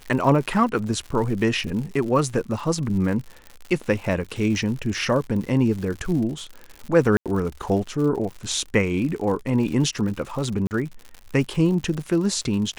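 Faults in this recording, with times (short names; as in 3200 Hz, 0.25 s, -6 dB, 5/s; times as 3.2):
crackle 110/s -31 dBFS
7.17–7.26 gap 87 ms
10.67–10.71 gap 39 ms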